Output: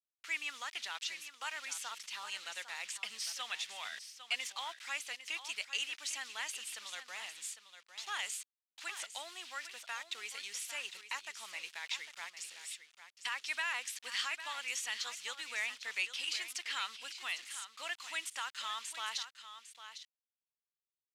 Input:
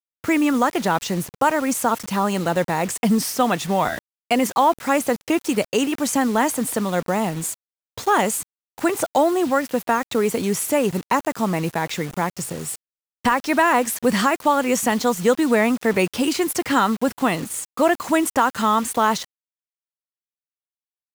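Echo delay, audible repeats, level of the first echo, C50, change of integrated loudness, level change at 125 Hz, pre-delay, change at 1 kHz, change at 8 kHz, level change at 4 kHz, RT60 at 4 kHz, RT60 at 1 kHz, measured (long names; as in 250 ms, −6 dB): 803 ms, 1, −11.0 dB, no reverb audible, −18.5 dB, below −40 dB, no reverb audible, −25.5 dB, −14.5 dB, −7.0 dB, no reverb audible, no reverb audible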